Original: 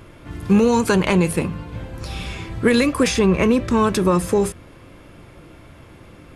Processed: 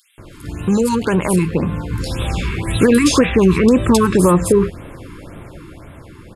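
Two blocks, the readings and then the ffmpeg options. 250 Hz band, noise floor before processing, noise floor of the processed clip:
+4.0 dB, −45 dBFS, −40 dBFS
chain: -filter_complex "[0:a]bandreject=frequency=5900:width=11,asplit=2[link_01][link_02];[link_02]acompressor=threshold=-26dB:ratio=6,volume=-2dB[link_03];[link_01][link_03]amix=inputs=2:normalize=0,alimiter=limit=-8dB:level=0:latency=1:release=76,dynaudnorm=framelen=210:gausssize=13:maxgain=7dB,acrossover=split=2800[link_04][link_05];[link_04]adelay=180[link_06];[link_06][link_05]amix=inputs=2:normalize=0,afftfilt=real='re*(1-between(b*sr/1024,590*pow(5700/590,0.5+0.5*sin(2*PI*1.9*pts/sr))/1.41,590*pow(5700/590,0.5+0.5*sin(2*PI*1.9*pts/sr))*1.41))':imag='im*(1-between(b*sr/1024,590*pow(5700/590,0.5+0.5*sin(2*PI*1.9*pts/sr))/1.41,590*pow(5700/590,0.5+0.5*sin(2*PI*1.9*pts/sr))*1.41))':win_size=1024:overlap=0.75"

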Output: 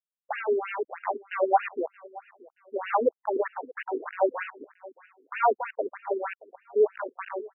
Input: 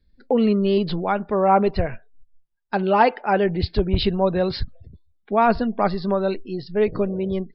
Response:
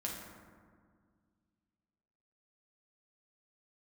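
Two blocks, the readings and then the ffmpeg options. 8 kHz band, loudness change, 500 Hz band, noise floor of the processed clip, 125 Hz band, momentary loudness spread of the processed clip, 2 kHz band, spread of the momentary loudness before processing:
can't be measured, −8.0 dB, −6.5 dB, below −85 dBFS, below −40 dB, 19 LU, −5.0 dB, 9 LU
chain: -af "aeval=exprs='val(0)*gte(abs(val(0)),0.1)':channel_layout=same,aecho=1:1:626|1252:0.0841|0.0278,afftfilt=real='re*between(b*sr/1024,330*pow(2100/330,0.5+0.5*sin(2*PI*3.2*pts/sr))/1.41,330*pow(2100/330,0.5+0.5*sin(2*PI*3.2*pts/sr))*1.41)':imag='im*between(b*sr/1024,330*pow(2100/330,0.5+0.5*sin(2*PI*3.2*pts/sr))/1.41,330*pow(2100/330,0.5+0.5*sin(2*PI*3.2*pts/sr))*1.41)':win_size=1024:overlap=0.75"

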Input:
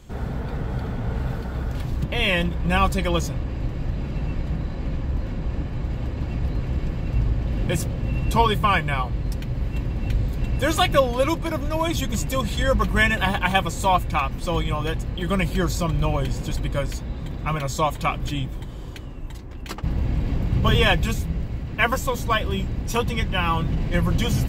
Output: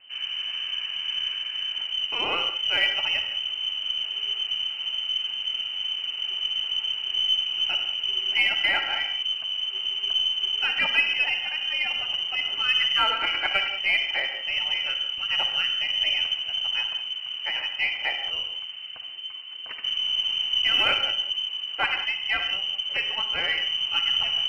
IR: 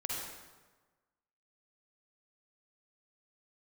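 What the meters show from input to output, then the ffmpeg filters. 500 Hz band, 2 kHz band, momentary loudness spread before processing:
−15.5 dB, +1.5 dB, 10 LU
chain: -filter_complex "[0:a]lowpass=frequency=2600:width_type=q:width=0.5098,lowpass=frequency=2600:width_type=q:width=0.6013,lowpass=frequency=2600:width_type=q:width=0.9,lowpass=frequency=2600:width_type=q:width=2.563,afreqshift=-3100,asplit=2[link_01][link_02];[1:a]atrim=start_sample=2205,afade=type=out:start_time=0.26:duration=0.01,atrim=end_sample=11907[link_03];[link_02][link_03]afir=irnorm=-1:irlink=0,volume=-3.5dB[link_04];[link_01][link_04]amix=inputs=2:normalize=0,aeval=exprs='1*(cos(1*acos(clip(val(0)/1,-1,1)))-cos(1*PI/2))+0.0224*(cos(2*acos(clip(val(0)/1,-1,1)))-cos(2*PI/2))+0.0158*(cos(4*acos(clip(val(0)/1,-1,1)))-cos(4*PI/2))+0.00708*(cos(8*acos(clip(val(0)/1,-1,1)))-cos(8*PI/2))':channel_layout=same,volume=-8.5dB"

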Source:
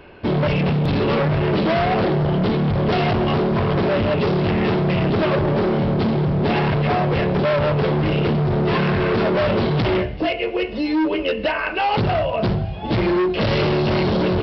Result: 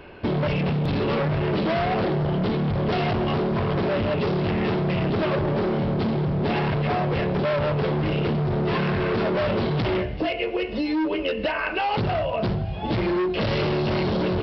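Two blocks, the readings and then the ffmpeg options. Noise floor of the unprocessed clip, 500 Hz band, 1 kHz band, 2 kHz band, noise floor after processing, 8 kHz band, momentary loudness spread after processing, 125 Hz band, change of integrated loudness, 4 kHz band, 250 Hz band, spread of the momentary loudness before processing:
−28 dBFS, −4.5 dB, −4.5 dB, −4.5 dB, −30 dBFS, can't be measured, 2 LU, −4.5 dB, −4.5 dB, −4.5 dB, −4.5 dB, 3 LU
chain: -af "acompressor=threshold=-22dB:ratio=6"

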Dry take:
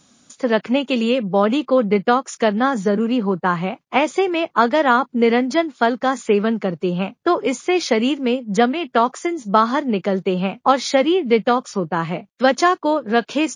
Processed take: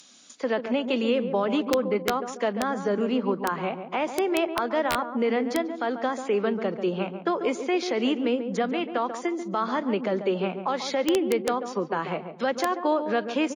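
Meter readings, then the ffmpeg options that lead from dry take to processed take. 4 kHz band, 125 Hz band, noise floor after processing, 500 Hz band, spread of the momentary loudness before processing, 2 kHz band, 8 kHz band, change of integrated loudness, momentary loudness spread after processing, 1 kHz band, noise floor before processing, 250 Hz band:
−7.5 dB, −10.5 dB, −42 dBFS, −7.0 dB, 5 LU, −9.0 dB, −7.5 dB, −8.0 dB, 4 LU, −9.5 dB, −63 dBFS, −8.0 dB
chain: -filter_complex "[0:a]highpass=270,aemphasis=mode=reproduction:type=50fm,alimiter=limit=-12.5dB:level=0:latency=1:release=109,asplit=2[link_01][link_02];[link_02]adelay=140,lowpass=frequency=870:poles=1,volume=-7dB,asplit=2[link_03][link_04];[link_04]adelay=140,lowpass=frequency=870:poles=1,volume=0.46,asplit=2[link_05][link_06];[link_06]adelay=140,lowpass=frequency=870:poles=1,volume=0.46,asplit=2[link_07][link_08];[link_08]adelay=140,lowpass=frequency=870:poles=1,volume=0.46,asplit=2[link_09][link_10];[link_10]adelay=140,lowpass=frequency=870:poles=1,volume=0.46[link_11];[link_03][link_05][link_07][link_09][link_11]amix=inputs=5:normalize=0[link_12];[link_01][link_12]amix=inputs=2:normalize=0,aeval=exprs='(mod(3.35*val(0)+1,2)-1)/3.35':channel_layout=same,acrossover=split=350|2500[link_13][link_14][link_15];[link_15]acompressor=mode=upward:threshold=-38dB:ratio=2.5[link_16];[link_13][link_14][link_16]amix=inputs=3:normalize=0,volume=-3.5dB"

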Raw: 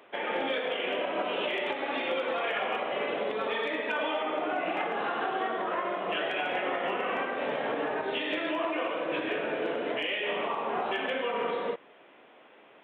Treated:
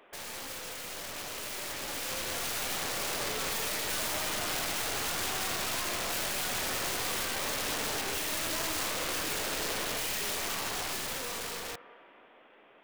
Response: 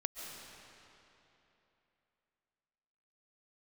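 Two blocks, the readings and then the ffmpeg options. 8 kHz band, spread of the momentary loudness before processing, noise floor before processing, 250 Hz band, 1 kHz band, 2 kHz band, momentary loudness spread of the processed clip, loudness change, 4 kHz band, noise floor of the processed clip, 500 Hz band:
can't be measured, 2 LU, −56 dBFS, −7.0 dB, −6.5 dB, −3.5 dB, 7 LU, −1.5 dB, +3.0 dB, −58 dBFS, −10.0 dB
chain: -filter_complex "[0:a]aeval=exprs='0.0944*(cos(1*acos(clip(val(0)/0.0944,-1,1)))-cos(1*PI/2))+0.00211*(cos(5*acos(clip(val(0)/0.0944,-1,1)))-cos(5*PI/2))+0.015*(cos(6*acos(clip(val(0)/0.0944,-1,1)))-cos(6*PI/2))':channel_layout=same,asplit=2[link_01][link_02];[link_02]bandpass=frequency=1500:width_type=q:width=1.5:csg=0[link_03];[1:a]atrim=start_sample=2205[link_04];[link_03][link_04]afir=irnorm=-1:irlink=0,volume=-13dB[link_05];[link_01][link_05]amix=inputs=2:normalize=0,aeval=exprs='(mod(35.5*val(0)+1,2)-1)/35.5':channel_layout=same,dynaudnorm=framelen=240:gausssize=17:maxgain=8dB,volume=-4.5dB"

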